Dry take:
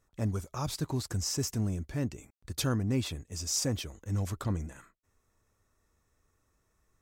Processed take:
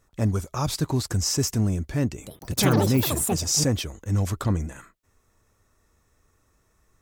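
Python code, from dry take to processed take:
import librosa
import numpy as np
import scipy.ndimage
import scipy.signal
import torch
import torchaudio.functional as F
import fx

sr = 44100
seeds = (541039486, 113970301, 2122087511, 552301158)

y = fx.echo_pitch(x, sr, ms=156, semitones=7, count=3, db_per_echo=-3.0, at=(2.1, 4.17))
y = y * librosa.db_to_amplitude(8.0)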